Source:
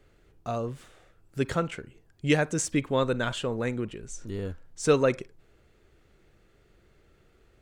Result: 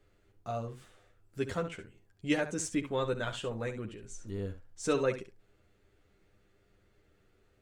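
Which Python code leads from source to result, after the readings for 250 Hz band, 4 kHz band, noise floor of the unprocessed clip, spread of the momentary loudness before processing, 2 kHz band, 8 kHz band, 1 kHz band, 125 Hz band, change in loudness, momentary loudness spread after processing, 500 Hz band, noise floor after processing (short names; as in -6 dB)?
-6.0 dB, -6.5 dB, -63 dBFS, 17 LU, -6.5 dB, -6.5 dB, -6.5 dB, -8.0 dB, -6.5 dB, 16 LU, -6.5 dB, -69 dBFS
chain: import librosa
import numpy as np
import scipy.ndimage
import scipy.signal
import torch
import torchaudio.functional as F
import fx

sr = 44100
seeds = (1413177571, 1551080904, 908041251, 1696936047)

y = fx.room_early_taps(x, sr, ms=(10, 70), db=(-4.0, -10.5))
y = y * 10.0 ** (-8.0 / 20.0)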